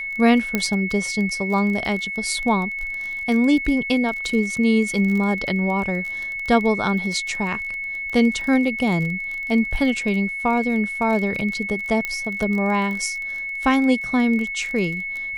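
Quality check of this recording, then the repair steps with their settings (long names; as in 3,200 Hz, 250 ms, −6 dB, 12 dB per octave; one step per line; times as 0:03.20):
surface crackle 25 per second −27 dBFS
whistle 2,200 Hz −26 dBFS
0:00.55: click −6 dBFS
0:12.05: click −11 dBFS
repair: click removal
notch filter 2,200 Hz, Q 30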